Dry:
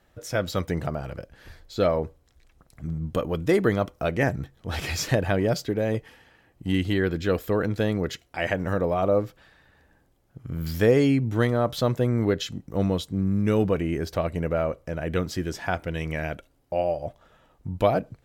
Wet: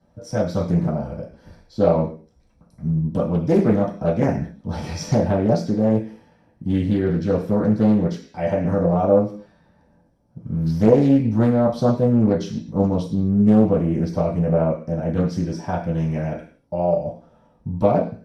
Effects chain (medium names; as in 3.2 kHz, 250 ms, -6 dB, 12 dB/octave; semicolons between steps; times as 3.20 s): low-pass 11 kHz 24 dB/octave; reverberation RT60 0.40 s, pre-delay 3 ms, DRR -7.5 dB; loudspeaker Doppler distortion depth 0.41 ms; trim -16.5 dB